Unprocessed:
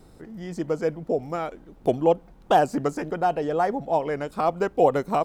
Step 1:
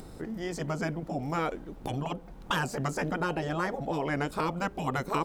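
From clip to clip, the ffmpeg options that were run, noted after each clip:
-filter_complex "[0:a]asplit=2[s0][s1];[s1]acompressor=threshold=0.0447:ratio=6,volume=1.19[s2];[s0][s2]amix=inputs=2:normalize=0,afftfilt=real='re*lt(hypot(re,im),0.398)':imag='im*lt(hypot(re,im),0.398)':win_size=1024:overlap=0.75,acompressor=mode=upward:threshold=0.00794:ratio=2.5,volume=0.794"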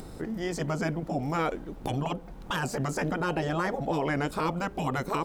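-af "alimiter=limit=0.0794:level=0:latency=1:release=21,volume=1.41"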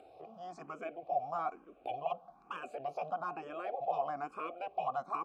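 -filter_complex "[0:a]asplit=3[s0][s1][s2];[s0]bandpass=f=730:t=q:w=8,volume=1[s3];[s1]bandpass=f=1090:t=q:w=8,volume=0.501[s4];[s2]bandpass=f=2440:t=q:w=8,volume=0.355[s5];[s3][s4][s5]amix=inputs=3:normalize=0,asplit=2[s6][s7];[s7]afreqshift=1.1[s8];[s6][s8]amix=inputs=2:normalize=1,volume=1.68"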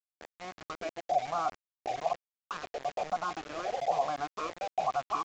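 -filter_complex "[0:a]acrossover=split=3000[s0][s1];[s1]adelay=330[s2];[s0][s2]amix=inputs=2:normalize=0,aeval=exprs='val(0)*gte(abs(val(0)),0.0075)':c=same,aresample=16000,aresample=44100,volume=1.78"

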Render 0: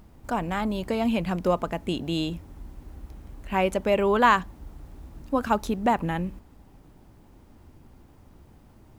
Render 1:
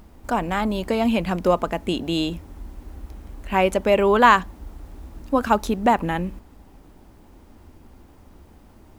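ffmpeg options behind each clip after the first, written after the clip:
-af "equalizer=f=130:t=o:w=0.56:g=-10,volume=1.78"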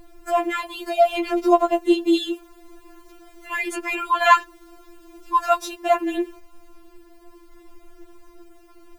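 -af "afftfilt=real='re*4*eq(mod(b,16),0)':imag='im*4*eq(mod(b,16),0)':win_size=2048:overlap=0.75,volume=1.58"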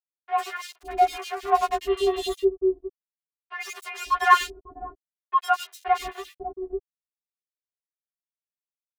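-filter_complex "[0:a]afreqshift=42,aeval=exprs='sgn(val(0))*max(abs(val(0))-0.0376,0)':c=same,acrossover=split=510|2500[s0][s1][s2];[s2]adelay=100[s3];[s0]adelay=550[s4];[s4][s1][s3]amix=inputs=3:normalize=0"

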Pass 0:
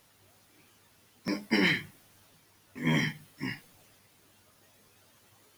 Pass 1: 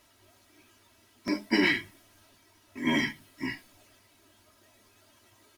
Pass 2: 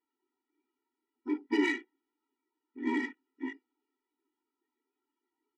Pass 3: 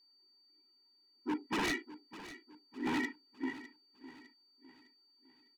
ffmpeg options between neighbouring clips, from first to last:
-af "highshelf=f=11000:g=-6.5,aecho=1:1:3.1:0.73"
-af "afwtdn=0.00891,adynamicsmooth=sensitivity=1:basefreq=1900,afftfilt=real='re*eq(mod(floor(b*sr/1024/250),2),1)':imag='im*eq(mod(floor(b*sr/1024/250),2),1)':win_size=1024:overlap=0.75,volume=0.841"
-af "aeval=exprs='val(0)+0.000562*sin(2*PI*4600*n/s)':c=same,aeval=exprs='0.0398*(abs(mod(val(0)/0.0398+3,4)-2)-1)':c=same,aecho=1:1:606|1212|1818|2424:0.168|0.0705|0.0296|0.0124"

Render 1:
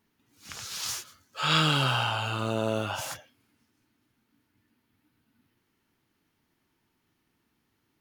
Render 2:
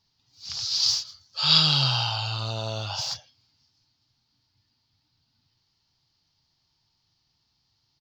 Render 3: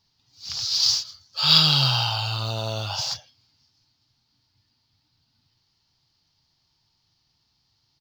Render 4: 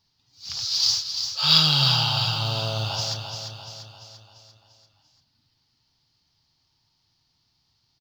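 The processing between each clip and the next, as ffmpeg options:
-af "firequalizer=gain_entry='entry(140,0);entry(210,-14);entry(370,-15);entry(780,-3);entry(1500,-11);entry(2300,-8);entry(4700,15);entry(9900,-29);entry(15000,-12)':delay=0.05:min_phase=1,volume=1.41"
-af "acrusher=bits=7:mode=log:mix=0:aa=0.000001,volume=1.33"
-af "aecho=1:1:344|688|1032|1376|1720|2064:0.447|0.232|0.121|0.0628|0.0327|0.017,volume=0.891"

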